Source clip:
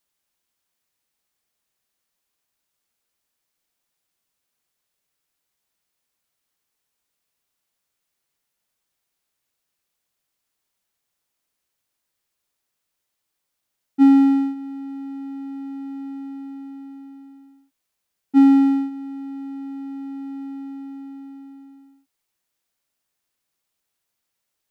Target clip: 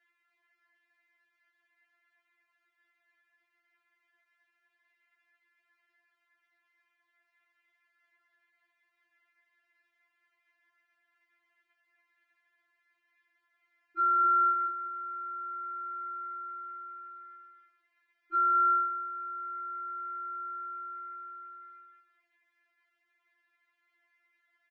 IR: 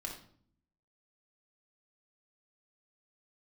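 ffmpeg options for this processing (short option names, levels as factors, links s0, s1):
-filter_complex "[0:a]highpass=f=560:p=1,asplit=3[s0][s1][s2];[s0]afade=t=out:st=14.25:d=0.02[s3];[s1]acontrast=75,afade=t=in:st=14.25:d=0.02,afade=t=out:st=14.67:d=0.02[s4];[s2]afade=t=in:st=14.67:d=0.02[s5];[s3][s4][s5]amix=inputs=3:normalize=0,alimiter=limit=0.0708:level=0:latency=1,lowpass=f=1900:t=q:w=8.5,aecho=1:1:187:0.237,afftfilt=real='re*4*eq(mod(b,16),0)':imag='im*4*eq(mod(b,16),0)':win_size=2048:overlap=0.75,volume=2.24"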